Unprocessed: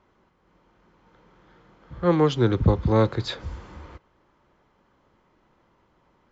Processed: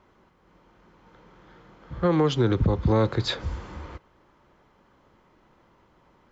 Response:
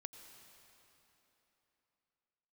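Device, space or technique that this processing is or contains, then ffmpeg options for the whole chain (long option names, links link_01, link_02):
stacked limiters: -af "alimiter=limit=-12dB:level=0:latency=1:release=284,alimiter=limit=-16dB:level=0:latency=1:release=60,volume=3.5dB"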